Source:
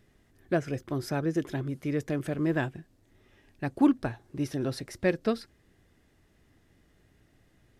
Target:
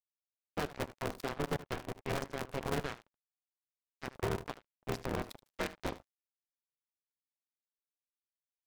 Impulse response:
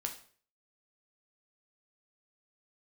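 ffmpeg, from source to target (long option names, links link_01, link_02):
-filter_complex "[0:a]highpass=frequency=230:poles=1,afftdn=noise_reduction=13:noise_floor=-53,bandreject=frequency=50:width_type=h:width=6,bandreject=frequency=100:width_type=h:width=6,bandreject=frequency=150:width_type=h:width=6,bandreject=frequency=200:width_type=h:width=6,bandreject=frequency=250:width_type=h:width=6,bandreject=frequency=300:width_type=h:width=6,bandreject=frequency=350:width_type=h:width=6,bandreject=frequency=400:width_type=h:width=6,bandreject=frequency=450:width_type=h:width=6,bandreject=frequency=500:width_type=h:width=6,asplit=3[link_01][link_02][link_03];[link_02]asetrate=33038,aresample=44100,atempo=1.33484,volume=-13dB[link_04];[link_03]asetrate=58866,aresample=44100,atempo=0.749154,volume=-10dB[link_05];[link_01][link_04][link_05]amix=inputs=3:normalize=0,alimiter=limit=-24dB:level=0:latency=1:release=138,acrusher=bits=4:mix=0:aa=0.5,asetrate=39690,aresample=44100,bandreject=frequency=730:width=12,asplit=2[link_06][link_07];[link_07]aecho=0:1:77:0.158[link_08];[link_06][link_08]amix=inputs=2:normalize=0,aeval=exprs='val(0)*sgn(sin(2*PI*140*n/s))':channel_layout=same,volume=-2.5dB"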